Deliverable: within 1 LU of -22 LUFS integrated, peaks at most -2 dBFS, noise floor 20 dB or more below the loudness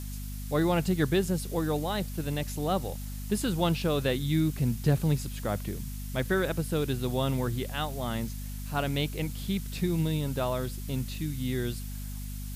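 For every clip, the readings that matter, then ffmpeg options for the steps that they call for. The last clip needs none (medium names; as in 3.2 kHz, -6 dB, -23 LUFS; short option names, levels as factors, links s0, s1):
hum 50 Hz; highest harmonic 250 Hz; hum level -35 dBFS; noise floor -37 dBFS; noise floor target -51 dBFS; loudness -30.5 LUFS; peak level -13.0 dBFS; loudness target -22.0 LUFS
-> -af "bandreject=f=50:t=h:w=6,bandreject=f=100:t=h:w=6,bandreject=f=150:t=h:w=6,bandreject=f=200:t=h:w=6,bandreject=f=250:t=h:w=6"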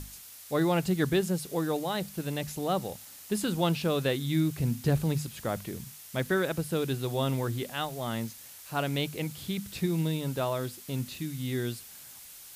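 hum not found; noise floor -48 dBFS; noise floor target -51 dBFS
-> -af "afftdn=nr=6:nf=-48"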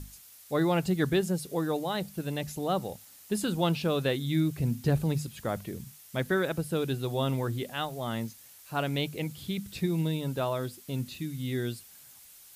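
noise floor -53 dBFS; loudness -31.0 LUFS; peak level -14.0 dBFS; loudness target -22.0 LUFS
-> -af "volume=2.82"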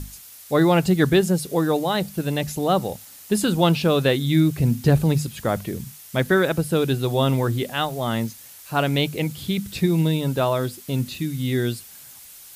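loudness -22.0 LUFS; peak level -5.0 dBFS; noise floor -44 dBFS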